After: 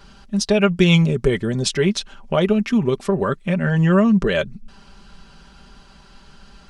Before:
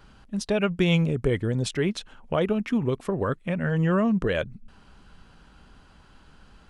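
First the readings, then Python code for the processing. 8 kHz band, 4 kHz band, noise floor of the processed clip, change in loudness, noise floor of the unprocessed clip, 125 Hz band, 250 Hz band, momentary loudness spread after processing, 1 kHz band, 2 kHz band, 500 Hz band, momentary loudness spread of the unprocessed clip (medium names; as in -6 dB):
+11.0 dB, +9.5 dB, -48 dBFS, +7.0 dB, -54 dBFS, +6.5 dB, +7.5 dB, 9 LU, +6.0 dB, +7.0 dB, +6.5 dB, 8 LU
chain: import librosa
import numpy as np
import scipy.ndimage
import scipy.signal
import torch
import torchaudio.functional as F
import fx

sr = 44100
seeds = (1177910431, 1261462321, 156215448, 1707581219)

y = fx.peak_eq(x, sr, hz=5200.0, db=7.5, octaves=1.1)
y = y + 0.56 * np.pad(y, (int(5.1 * sr / 1000.0), 0))[:len(y)]
y = y * librosa.db_to_amplitude(4.5)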